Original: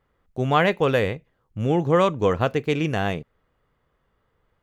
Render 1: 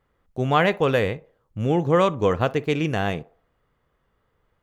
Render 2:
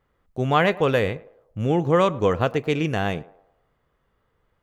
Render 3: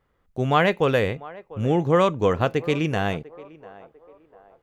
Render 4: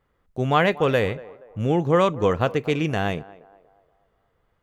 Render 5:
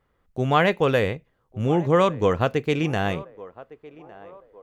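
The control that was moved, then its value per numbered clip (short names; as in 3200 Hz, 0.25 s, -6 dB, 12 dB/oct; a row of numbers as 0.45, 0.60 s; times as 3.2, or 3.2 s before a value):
narrowing echo, time: 60, 108, 697, 237, 1158 ms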